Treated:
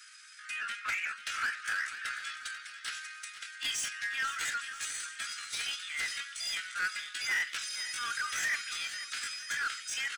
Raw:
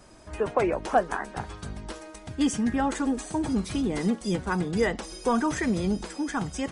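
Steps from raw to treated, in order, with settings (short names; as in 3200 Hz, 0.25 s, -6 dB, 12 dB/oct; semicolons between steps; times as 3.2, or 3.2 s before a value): steep high-pass 1300 Hz 96 dB/oct; dynamic EQ 2500 Hz, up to +3 dB, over -50 dBFS, Q 1.1; overdrive pedal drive 19 dB, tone 7200 Hz, clips at -18.5 dBFS; tempo 0.66×; feedback echo 0.489 s, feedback 44%, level -12.5 dB; gain -6 dB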